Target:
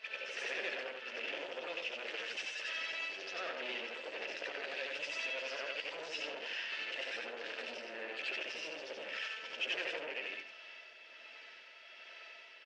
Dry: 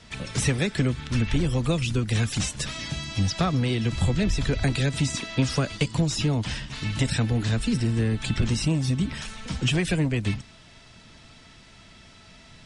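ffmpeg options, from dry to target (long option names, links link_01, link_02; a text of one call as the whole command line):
ffmpeg -i in.wav -filter_complex "[0:a]afftfilt=real='re':imag='-im':win_size=8192:overlap=0.75,acontrast=42,aeval=exprs='0.106*(abs(mod(val(0)/0.106+3,4)-2)-1)':channel_layout=same,tremolo=f=1.3:d=0.33,asoftclip=type=tanh:threshold=-31dB,highpass=frequency=470:width=0.5412,highpass=frequency=470:width=1.3066,equalizer=frequency=540:width_type=q:width=4:gain=4,equalizer=frequency=780:width_type=q:width=4:gain=-5,equalizer=frequency=1100:width_type=q:width=4:gain=-7,equalizer=frequency=1700:width_type=q:width=4:gain=4,equalizer=frequency=2700:width_type=q:width=4:gain=8,equalizer=frequency=3900:width_type=q:width=4:gain=-7,lowpass=frequency=4800:width=0.5412,lowpass=frequency=4800:width=1.3066,asplit=2[link_01][link_02];[link_02]adelay=13,volume=-10.5dB[link_03];[link_01][link_03]amix=inputs=2:normalize=0,aecho=1:1:72:0.251,volume=-3dB" -ar 22050 -c:a nellymoser out.flv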